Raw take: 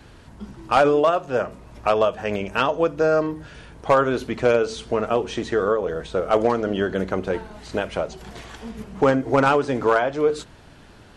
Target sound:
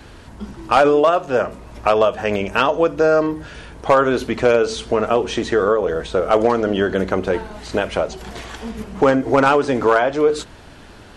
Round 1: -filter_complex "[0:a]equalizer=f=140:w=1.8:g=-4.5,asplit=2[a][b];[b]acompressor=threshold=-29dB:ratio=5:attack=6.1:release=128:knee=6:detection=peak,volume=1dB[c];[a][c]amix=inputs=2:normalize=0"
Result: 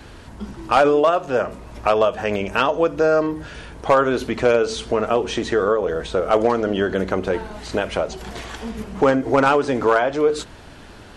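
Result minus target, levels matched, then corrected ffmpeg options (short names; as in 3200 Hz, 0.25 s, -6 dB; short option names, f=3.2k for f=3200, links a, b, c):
compressor: peak gain reduction +7 dB
-filter_complex "[0:a]equalizer=f=140:w=1.8:g=-4.5,asplit=2[a][b];[b]acompressor=threshold=-20.5dB:ratio=5:attack=6.1:release=128:knee=6:detection=peak,volume=1dB[c];[a][c]amix=inputs=2:normalize=0"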